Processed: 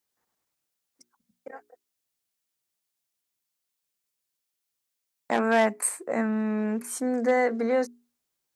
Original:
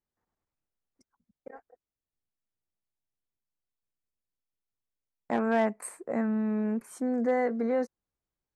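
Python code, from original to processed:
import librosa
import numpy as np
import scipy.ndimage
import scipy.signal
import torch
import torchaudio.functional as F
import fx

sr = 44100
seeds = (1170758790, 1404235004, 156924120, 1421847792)

y = fx.highpass(x, sr, hz=200.0, slope=6)
y = fx.high_shelf(y, sr, hz=2400.0, db=10.5)
y = fx.hum_notches(y, sr, base_hz=60, count=7)
y = F.gain(torch.from_numpy(y), 4.0).numpy()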